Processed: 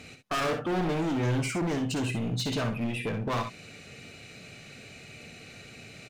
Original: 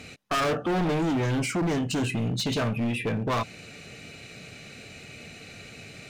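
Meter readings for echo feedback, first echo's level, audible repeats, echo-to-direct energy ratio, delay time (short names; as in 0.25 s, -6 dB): no steady repeat, -10.5 dB, 1, -7.5 dB, 57 ms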